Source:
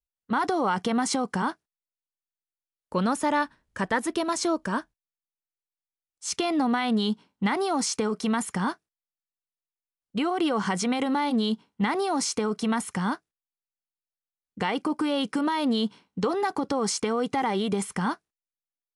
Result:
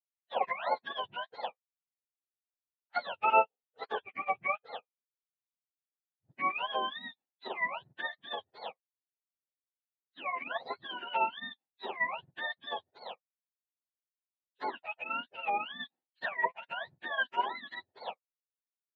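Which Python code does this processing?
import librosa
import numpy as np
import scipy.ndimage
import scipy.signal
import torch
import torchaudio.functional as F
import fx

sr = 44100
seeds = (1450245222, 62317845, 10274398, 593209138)

y = fx.octave_mirror(x, sr, pivot_hz=880.0)
y = fx.bandpass_edges(y, sr, low_hz=580.0, high_hz=2600.0)
y = fx.upward_expand(y, sr, threshold_db=-47.0, expansion=2.5)
y = y * librosa.db_to_amplitude(5.0)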